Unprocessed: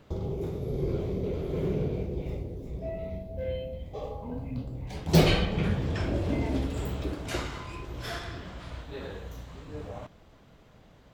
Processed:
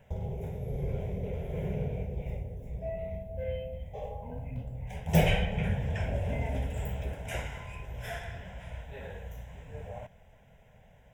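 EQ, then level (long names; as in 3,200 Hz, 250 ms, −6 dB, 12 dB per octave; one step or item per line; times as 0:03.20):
phaser with its sweep stopped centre 1,200 Hz, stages 6
0.0 dB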